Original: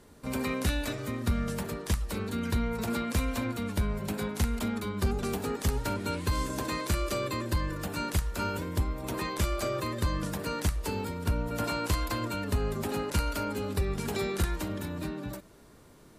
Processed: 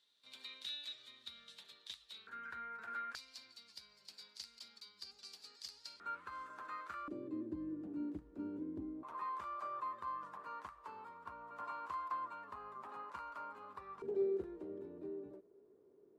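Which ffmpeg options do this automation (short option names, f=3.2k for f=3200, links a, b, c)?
-af "asetnsamples=n=441:p=0,asendcmd='2.27 bandpass f 1500;3.15 bandpass f 4700;6 bandpass f 1300;7.08 bandpass f 300;9.03 bandpass f 1100;14.02 bandpass f 400',bandpass=f=3.7k:t=q:w=7.7:csg=0"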